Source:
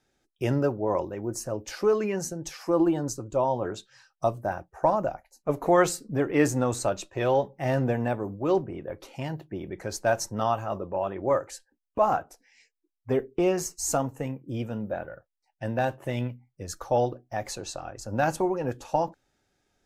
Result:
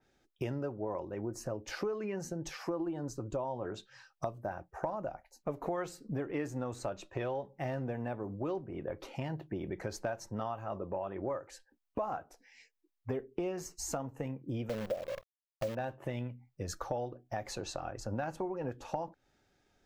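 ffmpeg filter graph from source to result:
ffmpeg -i in.wav -filter_complex "[0:a]asettb=1/sr,asplit=3[link_01][link_02][link_03];[link_01]atrim=end=14.694[link_04];[link_02]atrim=start=14.69:end=15.75,asetpts=PTS-STARTPTS,afade=type=in:duration=0.004:curve=qsin,afade=type=out:start_time=1.056:duration=0.004:curve=qsin,lowpass=frequency=560:width_type=q:width=5.1,acrusher=bits=6:dc=4:mix=0:aa=0.000001[link_05];[link_03]atrim=start=15.746[link_06];[link_04][link_05]acrossfade=duration=0.004:curve1=hsin:curve2=qsin[link_07];[link_07][link_06]acrossfade=duration=0.004:curve1=qsin:curve2=hsin,equalizer=frequency=9800:width=0.82:gain=-7,acompressor=threshold=-35dB:ratio=6,adynamicequalizer=threshold=0.00141:dfrequency=3200:dqfactor=0.7:tfrequency=3200:tqfactor=0.7:attack=5:release=100:ratio=0.375:range=2.5:mode=cutabove:tftype=highshelf,volume=1dB" out.wav

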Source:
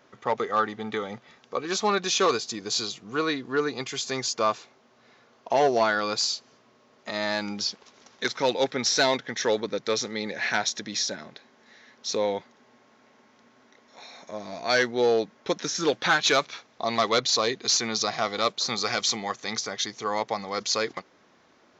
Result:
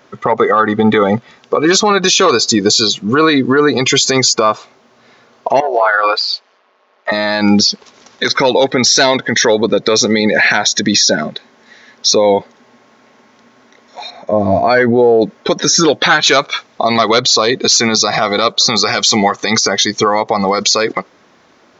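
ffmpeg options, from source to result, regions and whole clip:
ffmpeg -i in.wav -filter_complex "[0:a]asettb=1/sr,asplit=3[link_01][link_02][link_03];[link_01]atrim=end=5.604[link_04];[link_02]atrim=start=5.6:end=7.12,asetpts=PTS-STARTPTS,afade=type=in:duration=0.004:curve=qsin,afade=type=out:start_time=1.516:duration=0.004:curve=qsin,acompressor=threshold=-25dB:ratio=10:attack=3.2:release=140:knee=1:detection=peak,tremolo=f=190:d=0.667,highpass=580,lowpass=3300[link_05];[link_03]atrim=start=7.116[link_06];[link_04][link_05]acrossfade=duration=0.004:curve1=hsin:curve2=qsin[link_07];[link_07][link_06]acrossfade=duration=0.004:curve1=qsin:curve2=hsin,asettb=1/sr,asplit=3[link_08][link_09][link_10];[link_08]atrim=end=14.104[link_11];[link_09]atrim=start=14.1:end=15.22,asetpts=PTS-STARTPTS,afade=type=in:duration=0.004:curve=qsin,afade=type=out:start_time=1.116:duration=0.004:curve=qsin,lowpass=frequency=1500:poles=1,acompressor=threshold=-27dB:ratio=3:attack=3.2:release=140:knee=1:detection=peak,equalizer=frequency=97:width_type=o:width=0.2:gain=12[link_12];[link_10]atrim=start=15.216[link_13];[link_11][link_12]acrossfade=duration=0.004:curve1=hsin:curve2=qsin[link_14];[link_14][link_13]acrossfade=duration=0.004:curve1=qsin:curve2=hsin,afftdn=noise_reduction=16:noise_floor=-37,acompressor=threshold=-29dB:ratio=5,alimiter=level_in=28dB:limit=-1dB:release=50:level=0:latency=1,volume=-1dB" out.wav

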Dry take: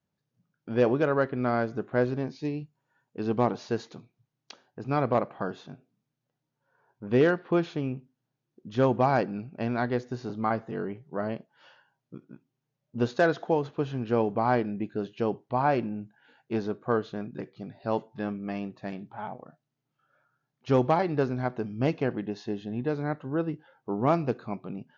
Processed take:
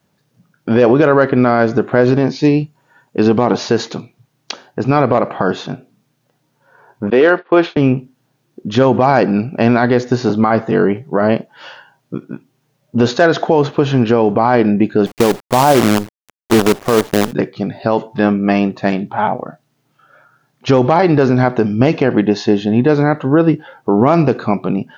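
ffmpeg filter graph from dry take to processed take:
ffmpeg -i in.wav -filter_complex "[0:a]asettb=1/sr,asplit=3[link_01][link_02][link_03];[link_01]atrim=end=7.104[link_04];[link_02]atrim=start=7.1:end=7.77,asetpts=PTS-STARTPTS,afade=type=in:duration=0.004:curve=qsin,afade=type=out:start_time=0.666:duration=0.004:curve=qsin,highpass=340,lowpass=4100,agate=range=-33dB:threshold=-39dB:ratio=3:release=100:detection=peak[link_05];[link_03]atrim=start=7.766[link_06];[link_04][link_05]acrossfade=duration=0.004:curve1=hsin:curve2=qsin[link_07];[link_07][link_06]acrossfade=duration=0.004:curve1=qsin:curve2=hsin,asettb=1/sr,asplit=3[link_08][link_09][link_10];[link_08]atrim=end=15.064[link_11];[link_09]atrim=start=15.06:end=17.33,asetpts=PTS-STARTPTS,afade=type=in:duration=0.004:curve=qsin,afade=type=out:start_time=2.266:duration=0.004:curve=qsin,lowpass=1200,acrusher=bits=6:dc=4:mix=0:aa=0.000001[link_12];[link_10]atrim=start=17.326[link_13];[link_11][link_12]acrossfade=duration=0.004:curve1=hsin:curve2=qsin[link_14];[link_14][link_13]acrossfade=duration=0.004:curve1=qsin:curve2=hsin,lowshelf=frequency=96:gain=-9,alimiter=level_in=22.5dB:limit=-1dB:release=50:level=0:latency=1,volume=-1dB" out.wav

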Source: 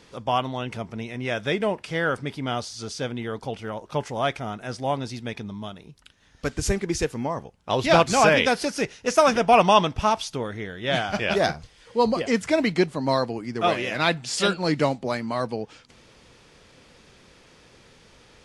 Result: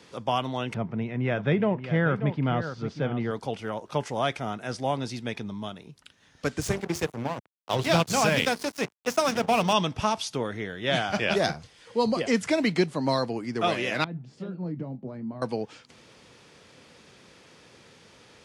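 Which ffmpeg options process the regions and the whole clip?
ffmpeg -i in.wav -filter_complex "[0:a]asettb=1/sr,asplit=3[link_01][link_02][link_03];[link_01]atrim=end=0.744[link_04];[link_02]atrim=start=0.74:end=3.31,asetpts=PTS-STARTPTS,afade=type=in:duration=0.004:curve=qsin,afade=type=out:start_time=2.566:duration=0.004:curve=qsin,lowpass=2100,equalizer=frequency=150:width_type=o:width=0.96:gain=9.5,aecho=1:1:586:0.266,atrim=end_sample=113337[link_05];[link_03]atrim=start=3.306[link_06];[link_04][link_05]acrossfade=duration=0.004:curve1=hsin:curve2=qsin[link_07];[link_07][link_06]acrossfade=duration=0.004:curve1=qsin:curve2=hsin,asettb=1/sr,asplit=3[link_08][link_09][link_10];[link_08]atrim=end=6.614[link_11];[link_09]atrim=start=6.61:end=9.73,asetpts=PTS-STARTPTS,afade=type=in:duration=0.004:curve=qsin,afade=type=out:start_time=3.116:duration=0.004:curve=qsin,equalizer=frequency=120:width=1.4:gain=6.5,bandreject=frequency=50:width_type=h:width=6,bandreject=frequency=100:width_type=h:width=6,bandreject=frequency=150:width_type=h:width=6,bandreject=frequency=200:width_type=h:width=6,bandreject=frequency=250:width_type=h:width=6,bandreject=frequency=300:width_type=h:width=6,bandreject=frequency=350:width_type=h:width=6,bandreject=frequency=400:width_type=h:width=6,bandreject=frequency=450:width_type=h:width=6,aeval=exprs='sgn(val(0))*max(abs(val(0))-0.0299,0)':channel_layout=same[link_12];[link_10]atrim=start=9.726[link_13];[link_11][link_12]acrossfade=duration=0.004:curve1=hsin:curve2=qsin[link_14];[link_14][link_13]acrossfade=duration=0.004:curve1=qsin:curve2=hsin,asettb=1/sr,asplit=3[link_15][link_16][link_17];[link_15]atrim=end=14.044[link_18];[link_16]atrim=start=14.04:end=15.42,asetpts=PTS-STARTPTS,afade=type=in:duration=0.004:curve=qsin,afade=type=out:start_time=1.376:duration=0.004:curve=qsin,acompressor=threshold=-22dB:ratio=10:attack=3.2:release=140:knee=1:detection=peak,bandpass=frequency=160:width_type=q:width=1.2,asplit=2[link_19][link_20];[link_20]adelay=23,volume=-12dB[link_21];[link_19][link_21]amix=inputs=2:normalize=0,atrim=end_sample=60858[link_22];[link_17]atrim=start=15.416[link_23];[link_18][link_22]acrossfade=duration=0.004:curve1=hsin:curve2=qsin[link_24];[link_24][link_23]acrossfade=duration=0.004:curve1=qsin:curve2=hsin,highpass=100,acrossover=split=260|3000[link_25][link_26][link_27];[link_26]acompressor=threshold=-23dB:ratio=3[link_28];[link_25][link_28][link_27]amix=inputs=3:normalize=0" out.wav

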